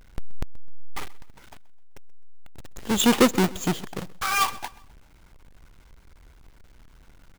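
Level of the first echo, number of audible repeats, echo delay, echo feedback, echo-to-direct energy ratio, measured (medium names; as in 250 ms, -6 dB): -21.0 dB, 2, 129 ms, 41%, -20.0 dB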